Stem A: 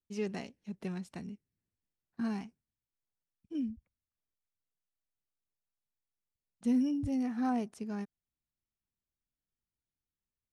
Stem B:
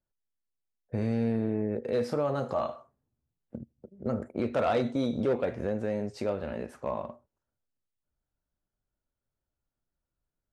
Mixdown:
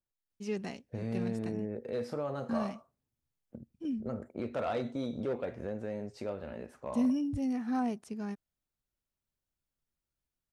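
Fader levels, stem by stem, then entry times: 0.0, −7.0 decibels; 0.30, 0.00 seconds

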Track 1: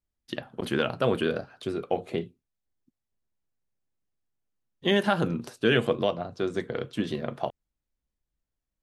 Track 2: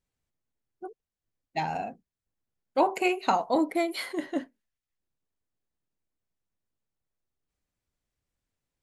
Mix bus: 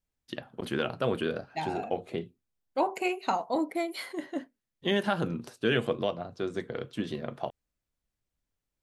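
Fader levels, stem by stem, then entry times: −4.0, −4.0 decibels; 0.00, 0.00 seconds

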